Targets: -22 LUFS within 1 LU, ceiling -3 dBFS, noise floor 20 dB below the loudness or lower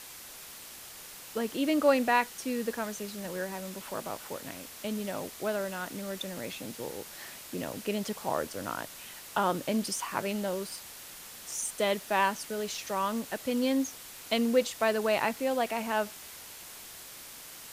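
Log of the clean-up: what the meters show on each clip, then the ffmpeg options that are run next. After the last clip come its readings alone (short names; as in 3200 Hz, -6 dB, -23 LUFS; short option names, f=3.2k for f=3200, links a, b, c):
noise floor -47 dBFS; noise floor target -52 dBFS; loudness -32.0 LUFS; peak -11.0 dBFS; loudness target -22.0 LUFS
-> -af "afftdn=nr=6:nf=-47"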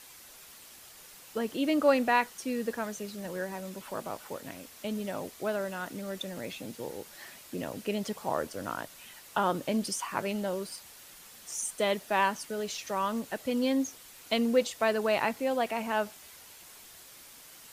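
noise floor -52 dBFS; loudness -32.0 LUFS; peak -11.0 dBFS; loudness target -22.0 LUFS
-> -af "volume=10dB,alimiter=limit=-3dB:level=0:latency=1"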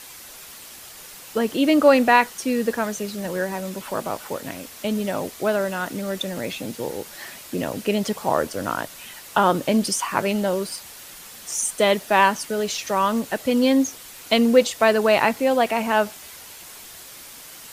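loudness -22.0 LUFS; peak -3.0 dBFS; noise floor -42 dBFS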